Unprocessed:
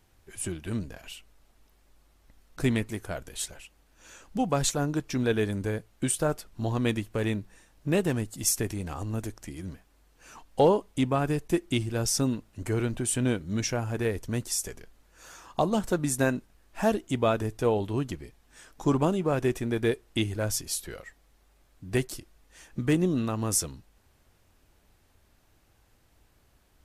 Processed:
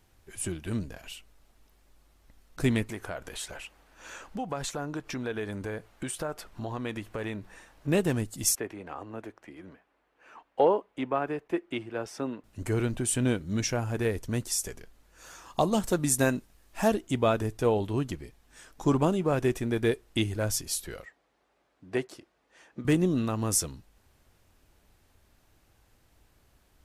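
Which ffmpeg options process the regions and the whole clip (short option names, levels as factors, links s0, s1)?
-filter_complex "[0:a]asettb=1/sr,asplit=3[s0][s1][s2];[s0]atrim=end=2.894[s3];[s1]atrim=start=2.89:end=7.88,asetpts=PTS-STARTPTS,afade=t=in:d=0.004:c=qsin,afade=t=out:st=4.986:d=0.004:c=qsin,equalizer=f=1100:w=0.35:g=9.5,acompressor=threshold=0.0158:ratio=2.5:attack=3.2:release=140:knee=1:detection=peak[s4];[s2]atrim=start=7.876[s5];[s3][s4]acrossfade=d=0.004:c1=hsin:c2=qsin[s6];[s6][s5]acrossfade=d=0.004:c1=qsin:c2=hsin,asettb=1/sr,asplit=3[s7][s8][s9];[s7]atrim=end=8.554[s10];[s8]atrim=start=8.55:end=12.44,asetpts=PTS-STARTPTS,afade=t=in:d=0.004:c=qsin,afade=t=out:st=3.886:d=0.004:c=qsin,highpass=f=160:p=1,acrossover=split=300 2800:gain=0.251 1 0.0794[s11][s12][s13];[s11][s12][s13]amix=inputs=3:normalize=0[s14];[s9]atrim=start=12.436[s15];[s10][s14]acrossfade=d=0.004:c1=hsin:c2=qsin[s16];[s16][s15]acrossfade=d=0.004:c1=qsin:c2=hsin,asettb=1/sr,asplit=3[s17][s18][s19];[s17]atrim=end=15.464[s20];[s18]atrim=start=15.46:end=16.88,asetpts=PTS-STARTPTS,afade=t=in:d=0.004:c=qsin,afade=t=out:st=1.416:d=0.004:c=qsin,highshelf=f=4000:g=5.5,bandreject=f=1500:w=22[s21];[s19]atrim=start=16.876[s22];[s20][s21]acrossfade=d=0.004:c1=hsin:c2=qsin[s23];[s23][s22]acrossfade=d=0.004:c1=qsin:c2=hsin,asettb=1/sr,asplit=3[s24][s25][s26];[s24]atrim=end=21.054[s27];[s25]atrim=start=21.05:end=22.85,asetpts=PTS-STARTPTS,afade=t=in:d=0.004:c=qsin,afade=t=out:st=1.796:d=0.004:c=qsin,highpass=470,aemphasis=mode=reproduction:type=riaa[s28];[s26]atrim=start=22.846[s29];[s27][s28]acrossfade=d=0.004:c1=hsin:c2=qsin[s30];[s30][s29]acrossfade=d=0.004:c1=qsin:c2=hsin"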